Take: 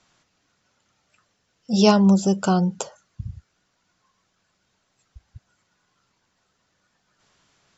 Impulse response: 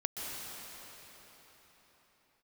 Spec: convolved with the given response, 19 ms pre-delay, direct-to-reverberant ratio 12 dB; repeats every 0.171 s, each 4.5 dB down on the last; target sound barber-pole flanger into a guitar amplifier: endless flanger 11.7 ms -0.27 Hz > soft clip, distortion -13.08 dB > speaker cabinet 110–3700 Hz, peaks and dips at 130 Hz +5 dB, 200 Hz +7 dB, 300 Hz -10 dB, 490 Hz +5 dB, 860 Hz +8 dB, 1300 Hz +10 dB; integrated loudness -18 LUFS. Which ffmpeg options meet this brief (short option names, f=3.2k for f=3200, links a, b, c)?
-filter_complex "[0:a]aecho=1:1:171|342|513|684|855|1026|1197|1368|1539:0.596|0.357|0.214|0.129|0.0772|0.0463|0.0278|0.0167|0.01,asplit=2[a][b];[1:a]atrim=start_sample=2205,adelay=19[c];[b][c]afir=irnorm=-1:irlink=0,volume=-16dB[d];[a][d]amix=inputs=2:normalize=0,asplit=2[e][f];[f]adelay=11.7,afreqshift=-0.27[g];[e][g]amix=inputs=2:normalize=1,asoftclip=threshold=-18dB,highpass=110,equalizer=f=130:t=q:w=4:g=5,equalizer=f=200:t=q:w=4:g=7,equalizer=f=300:t=q:w=4:g=-10,equalizer=f=490:t=q:w=4:g=5,equalizer=f=860:t=q:w=4:g=8,equalizer=f=1.3k:t=q:w=4:g=10,lowpass=f=3.7k:w=0.5412,lowpass=f=3.7k:w=1.3066,volume=6.5dB"